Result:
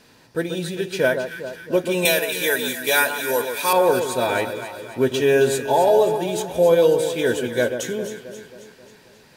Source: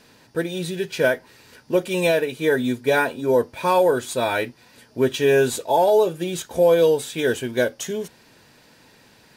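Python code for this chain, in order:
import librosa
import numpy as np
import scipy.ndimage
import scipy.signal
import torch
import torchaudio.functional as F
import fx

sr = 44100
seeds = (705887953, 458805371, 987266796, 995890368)

y = fx.tilt_eq(x, sr, slope=4.5, at=(2.05, 3.73))
y = fx.echo_alternate(y, sr, ms=134, hz=1400.0, feedback_pct=72, wet_db=-7.0)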